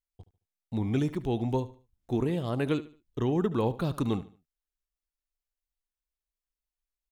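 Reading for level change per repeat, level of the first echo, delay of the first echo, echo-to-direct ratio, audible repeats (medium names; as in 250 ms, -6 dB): -10.0 dB, -17.0 dB, 73 ms, -16.5 dB, 2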